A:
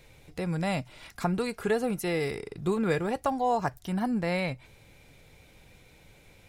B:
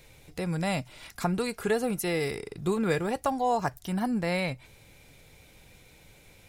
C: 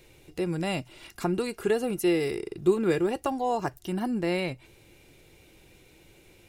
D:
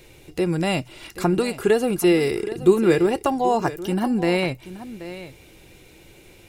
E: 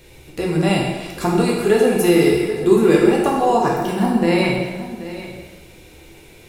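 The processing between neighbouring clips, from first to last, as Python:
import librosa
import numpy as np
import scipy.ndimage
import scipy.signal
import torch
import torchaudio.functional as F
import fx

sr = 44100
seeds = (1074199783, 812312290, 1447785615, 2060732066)

y1 = fx.high_shelf(x, sr, hz=4800.0, db=6.0)
y2 = fx.small_body(y1, sr, hz=(350.0, 2800.0), ring_ms=45, db=13)
y2 = y2 * librosa.db_to_amplitude(-2.5)
y3 = y2 + 10.0 ** (-14.5 / 20.0) * np.pad(y2, (int(780 * sr / 1000.0), 0))[:len(y2)]
y3 = y3 * librosa.db_to_amplitude(7.0)
y4 = fx.rev_plate(y3, sr, seeds[0], rt60_s=1.3, hf_ratio=0.85, predelay_ms=0, drr_db=-3.0)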